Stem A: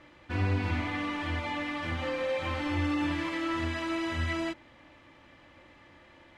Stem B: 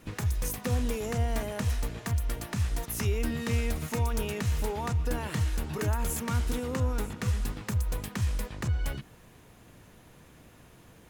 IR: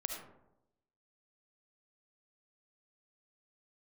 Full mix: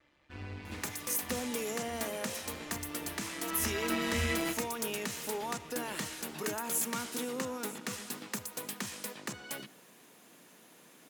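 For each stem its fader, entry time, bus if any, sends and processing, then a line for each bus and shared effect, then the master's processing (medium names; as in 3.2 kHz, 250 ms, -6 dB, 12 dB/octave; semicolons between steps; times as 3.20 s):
3.10 s -16 dB -> 3.88 s -3.5 dB, 0.00 s, send -4.5 dB, AM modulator 140 Hz, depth 45%; vibrato 0.47 Hz 15 cents
-4.5 dB, 0.65 s, send -15.5 dB, high-pass 200 Hz 24 dB/octave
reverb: on, RT60 0.85 s, pre-delay 30 ms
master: treble shelf 3 kHz +7.5 dB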